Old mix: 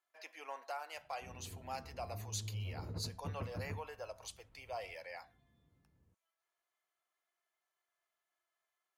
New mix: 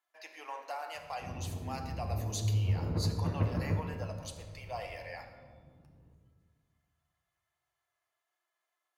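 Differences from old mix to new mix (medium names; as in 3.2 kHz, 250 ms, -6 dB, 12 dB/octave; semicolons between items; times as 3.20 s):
background +6.0 dB; reverb: on, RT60 1.6 s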